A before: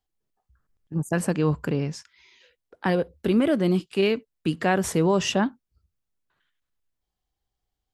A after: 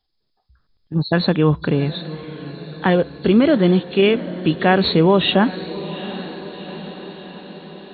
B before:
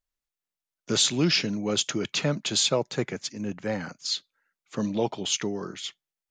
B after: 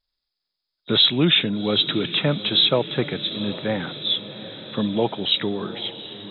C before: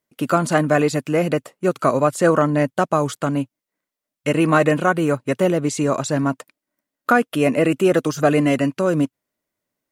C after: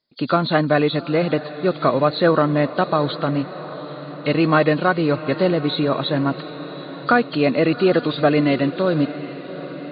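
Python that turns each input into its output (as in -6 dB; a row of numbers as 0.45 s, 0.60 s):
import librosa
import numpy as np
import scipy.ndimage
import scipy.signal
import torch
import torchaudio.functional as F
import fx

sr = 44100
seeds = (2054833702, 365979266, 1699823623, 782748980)

y = fx.freq_compress(x, sr, knee_hz=3200.0, ratio=4.0)
y = fx.echo_diffused(y, sr, ms=771, feedback_pct=63, wet_db=-14.5)
y = y * 10.0 ** (-3 / 20.0) / np.max(np.abs(y))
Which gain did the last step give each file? +7.0 dB, +4.5 dB, -0.5 dB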